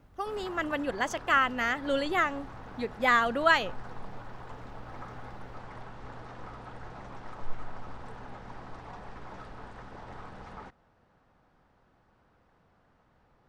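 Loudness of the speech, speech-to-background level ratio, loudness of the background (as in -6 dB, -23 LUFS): -27.5 LUFS, 18.5 dB, -46.0 LUFS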